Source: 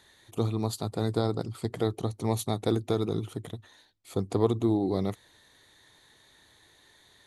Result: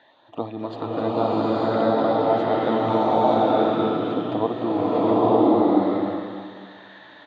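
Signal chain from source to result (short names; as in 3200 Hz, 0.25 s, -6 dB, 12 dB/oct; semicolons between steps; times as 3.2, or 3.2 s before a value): low shelf 340 Hz -11.5 dB; in parallel at 0 dB: compressor, threshold -40 dBFS, peak gain reduction 16.5 dB; on the sum: LFO notch sine 0.93 Hz 630–2000 Hz; speaker cabinet 190–2600 Hz, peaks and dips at 200 Hz -4 dB, 280 Hz +6 dB, 400 Hz -10 dB, 630 Hz +8 dB, 900 Hz +3 dB, 2200 Hz -9 dB; on a send: echo 0.259 s -11 dB; on the sum: bloom reverb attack 0.93 s, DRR -9.5 dB; gain +5.5 dB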